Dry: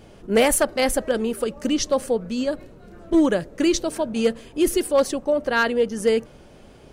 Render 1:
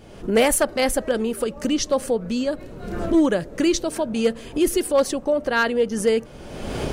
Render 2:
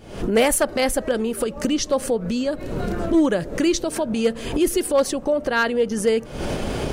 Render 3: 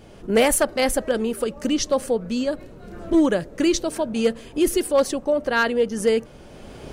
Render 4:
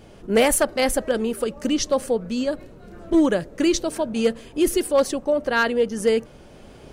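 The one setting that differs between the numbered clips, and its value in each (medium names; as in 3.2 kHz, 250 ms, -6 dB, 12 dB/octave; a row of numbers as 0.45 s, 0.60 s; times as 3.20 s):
recorder AGC, rising by: 36 dB/s, 89 dB/s, 14 dB/s, 5.3 dB/s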